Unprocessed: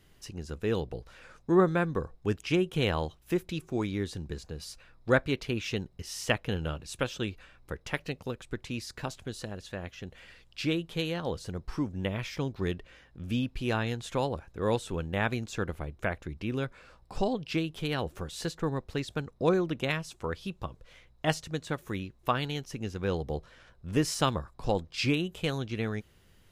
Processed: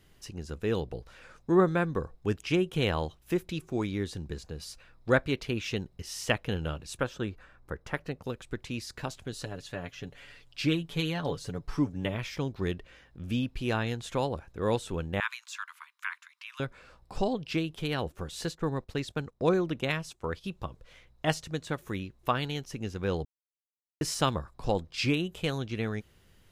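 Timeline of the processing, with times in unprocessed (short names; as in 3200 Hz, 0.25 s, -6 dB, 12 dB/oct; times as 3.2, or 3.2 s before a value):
6.97–8.24 resonant high shelf 2000 Hz -6 dB, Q 1.5
9.32–12.15 comb 7 ms, depth 63%
15.2–16.6 steep high-pass 960 Hz 96 dB/oct
17.75–20.44 gate -47 dBFS, range -10 dB
23.25–24.01 mute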